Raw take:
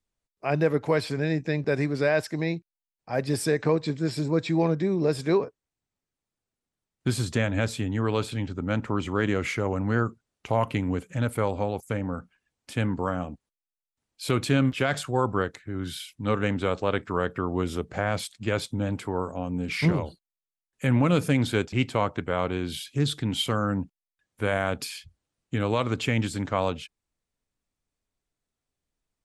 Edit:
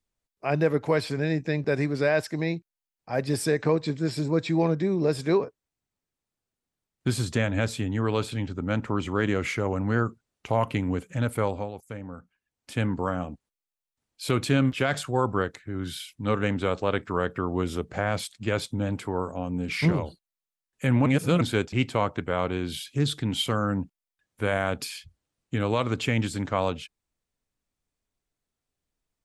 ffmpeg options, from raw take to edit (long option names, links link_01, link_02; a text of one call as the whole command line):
ffmpeg -i in.wav -filter_complex "[0:a]asplit=5[link_01][link_02][link_03][link_04][link_05];[link_01]atrim=end=11.71,asetpts=PTS-STARTPTS,afade=type=out:start_time=11.47:duration=0.24:silence=0.375837[link_06];[link_02]atrim=start=11.71:end=12.5,asetpts=PTS-STARTPTS,volume=-8.5dB[link_07];[link_03]atrim=start=12.5:end=21.062,asetpts=PTS-STARTPTS,afade=type=in:duration=0.24:silence=0.375837[link_08];[link_04]atrim=start=21.058:end=21.412,asetpts=PTS-STARTPTS,areverse[link_09];[link_05]atrim=start=21.408[link_10];[link_06][link_07][link_08]concat=n=3:v=0:a=1[link_11];[link_11][link_09]acrossfade=duration=0.004:curve1=hsin:curve2=hsin[link_12];[link_12][link_10]acrossfade=duration=0.004:curve1=hsin:curve2=hsin" out.wav